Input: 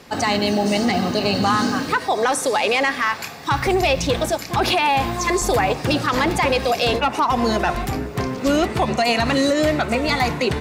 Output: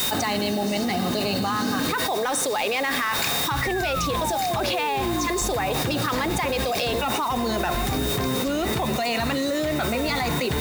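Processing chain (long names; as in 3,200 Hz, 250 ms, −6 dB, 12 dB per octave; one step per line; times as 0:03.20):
sound drawn into the spectrogram fall, 0:03.61–0:05.27, 280–2,000 Hz −25 dBFS
steady tone 3,700 Hz −35 dBFS
bit-depth reduction 6 bits, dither triangular
envelope flattener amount 100%
level −9 dB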